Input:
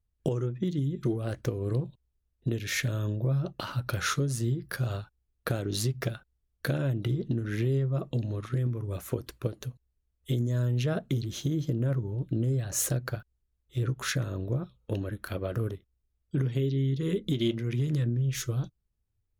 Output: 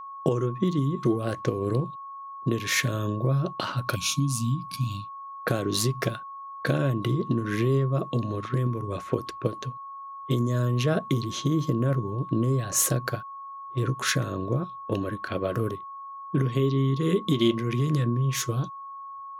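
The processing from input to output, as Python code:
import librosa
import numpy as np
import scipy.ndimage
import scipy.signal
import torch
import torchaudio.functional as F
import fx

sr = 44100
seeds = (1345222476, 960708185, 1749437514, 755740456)

y = scipy.signal.sosfilt(scipy.signal.butter(2, 140.0, 'highpass', fs=sr, output='sos'), x)
y = fx.env_lowpass(y, sr, base_hz=730.0, full_db=-30.5)
y = fx.spec_box(y, sr, start_s=3.95, length_s=1.29, low_hz=310.0, high_hz=2200.0, gain_db=-30)
y = y + 10.0 ** (-43.0 / 20.0) * np.sin(2.0 * np.pi * 1100.0 * np.arange(len(y)) / sr)
y = y * librosa.db_to_amplitude(6.0)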